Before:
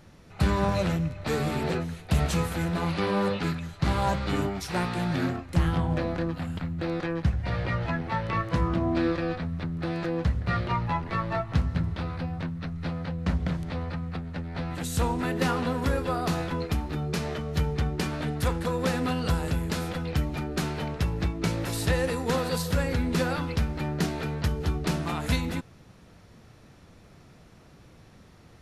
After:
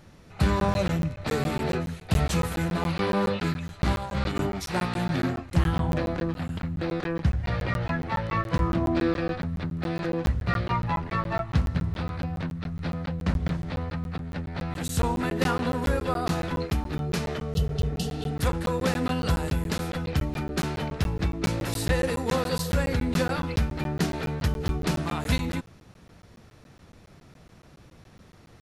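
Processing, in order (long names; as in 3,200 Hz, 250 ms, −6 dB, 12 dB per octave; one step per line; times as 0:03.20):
0:03.95–0:04.38: compressor whose output falls as the input rises −29 dBFS, ratio −0.5
0:17.57–0:18.29: healed spectral selection 220–2,600 Hz both
regular buffer underruns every 0.14 s, samples 512, zero, from 0:00.60
level +1 dB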